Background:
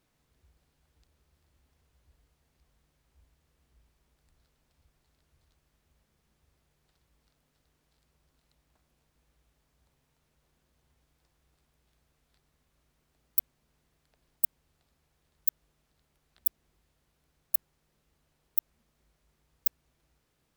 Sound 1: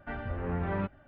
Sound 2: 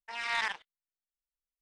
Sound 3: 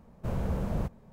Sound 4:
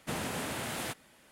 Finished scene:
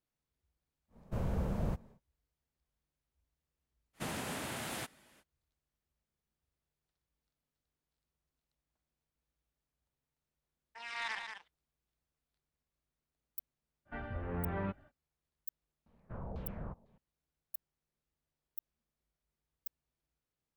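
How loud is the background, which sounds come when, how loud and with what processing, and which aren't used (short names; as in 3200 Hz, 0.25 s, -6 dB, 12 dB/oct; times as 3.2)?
background -17.5 dB
0.88 add 3 -4 dB, fades 0.10 s
3.93 add 4 -4 dB, fades 0.05 s + bell 480 Hz -2.5 dB 0.25 oct
10.67 add 2 -8 dB + echo 0.187 s -6.5 dB
13.85 add 1 -5.5 dB, fades 0.05 s
15.86 add 3 -13 dB + LFO low-pass saw down 2 Hz 650–4200 Hz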